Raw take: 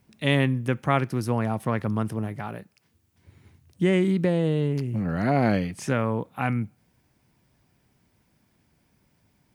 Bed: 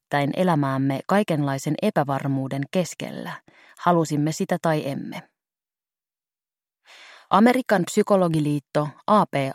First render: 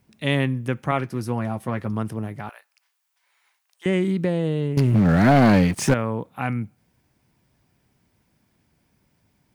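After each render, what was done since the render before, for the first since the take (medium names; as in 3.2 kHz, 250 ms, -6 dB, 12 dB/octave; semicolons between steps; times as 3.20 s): 0.91–1.93 s: comb of notches 150 Hz; 2.49–3.86 s: high-pass 830 Hz 24 dB/octave; 4.77–5.94 s: waveshaping leveller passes 3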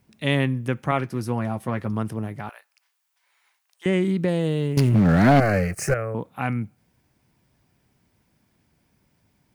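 4.28–4.89 s: treble shelf 3.3 kHz +7.5 dB; 5.40–6.15 s: static phaser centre 940 Hz, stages 6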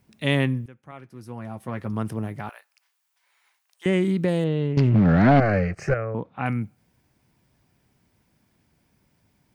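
0.66–2.10 s: fade in quadratic, from -22.5 dB; 4.44–6.46 s: distance through air 190 m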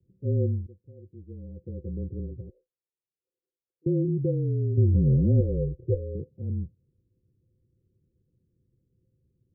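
rippled Chebyshev low-pass 560 Hz, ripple 9 dB; frequency shift -29 Hz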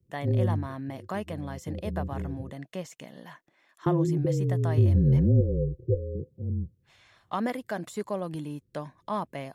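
add bed -13.5 dB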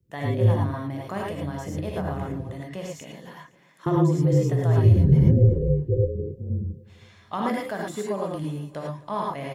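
feedback delay 258 ms, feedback 54%, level -21 dB; gated-style reverb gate 130 ms rising, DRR -2 dB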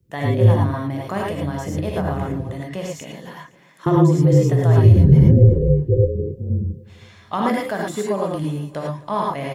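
trim +6 dB; peak limiter -2 dBFS, peak gain reduction 2.5 dB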